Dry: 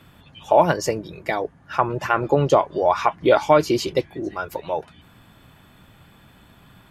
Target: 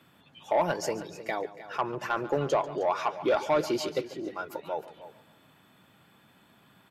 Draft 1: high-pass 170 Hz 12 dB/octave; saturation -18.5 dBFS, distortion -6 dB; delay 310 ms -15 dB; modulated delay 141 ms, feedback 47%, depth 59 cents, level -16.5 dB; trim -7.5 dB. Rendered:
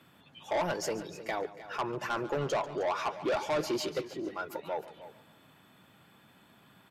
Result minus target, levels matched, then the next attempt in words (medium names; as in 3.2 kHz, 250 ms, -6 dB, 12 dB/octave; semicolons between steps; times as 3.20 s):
saturation: distortion +8 dB
high-pass 170 Hz 12 dB/octave; saturation -9.5 dBFS, distortion -15 dB; delay 310 ms -15 dB; modulated delay 141 ms, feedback 47%, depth 59 cents, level -16.5 dB; trim -7.5 dB